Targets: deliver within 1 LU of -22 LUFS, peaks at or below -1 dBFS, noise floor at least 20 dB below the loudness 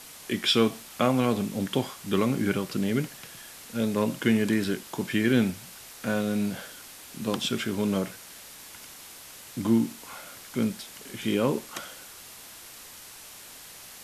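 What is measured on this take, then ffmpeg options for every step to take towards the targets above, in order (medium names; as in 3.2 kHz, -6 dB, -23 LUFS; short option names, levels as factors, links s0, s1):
noise floor -46 dBFS; noise floor target -48 dBFS; loudness -27.5 LUFS; peak level -8.0 dBFS; loudness target -22.0 LUFS
-> -af "afftdn=nr=6:nf=-46"
-af "volume=1.88"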